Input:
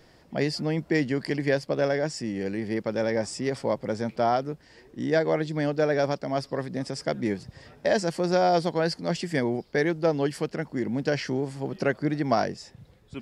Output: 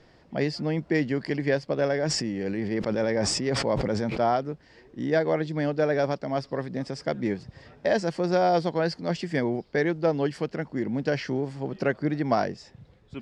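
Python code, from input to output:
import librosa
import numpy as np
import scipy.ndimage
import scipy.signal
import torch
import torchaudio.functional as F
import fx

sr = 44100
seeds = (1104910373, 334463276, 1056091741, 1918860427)

y = fx.air_absorb(x, sr, metres=85.0)
y = fx.sustainer(y, sr, db_per_s=26.0, at=(2.05, 4.32), fade=0.02)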